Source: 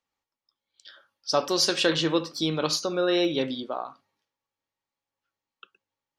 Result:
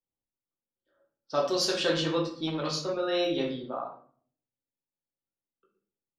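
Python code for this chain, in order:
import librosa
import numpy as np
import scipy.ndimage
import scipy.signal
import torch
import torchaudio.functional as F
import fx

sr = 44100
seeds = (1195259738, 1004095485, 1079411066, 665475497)

y = fx.env_lowpass(x, sr, base_hz=410.0, full_db=-20.0)
y = fx.room_shoebox(y, sr, seeds[0], volume_m3=54.0, walls='mixed', distance_m=0.73)
y = fx.transformer_sat(y, sr, knee_hz=560.0, at=(2.47, 3.0))
y = F.gain(torch.from_numpy(y), -7.5).numpy()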